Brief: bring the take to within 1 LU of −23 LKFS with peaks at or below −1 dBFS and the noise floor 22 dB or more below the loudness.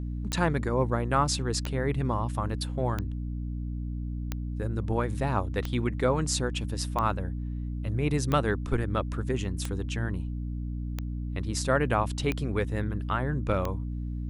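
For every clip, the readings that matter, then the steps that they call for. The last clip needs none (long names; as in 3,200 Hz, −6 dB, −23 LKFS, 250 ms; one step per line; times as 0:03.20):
number of clicks 11; mains hum 60 Hz; hum harmonics up to 300 Hz; level of the hum −30 dBFS; integrated loudness −30.0 LKFS; sample peak −11.0 dBFS; target loudness −23.0 LKFS
→ click removal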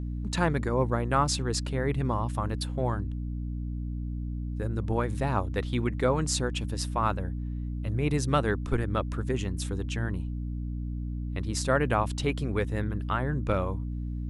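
number of clicks 0; mains hum 60 Hz; hum harmonics up to 300 Hz; level of the hum −30 dBFS
→ hum removal 60 Hz, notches 5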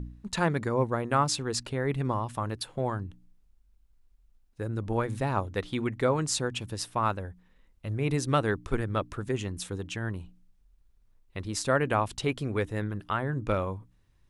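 mains hum none found; integrated loudness −30.5 LKFS; sample peak −11.5 dBFS; target loudness −23.0 LKFS
→ level +7.5 dB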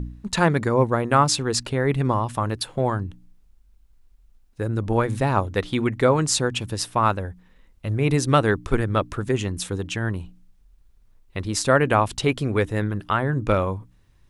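integrated loudness −23.0 LKFS; sample peak −4.0 dBFS; background noise floor −56 dBFS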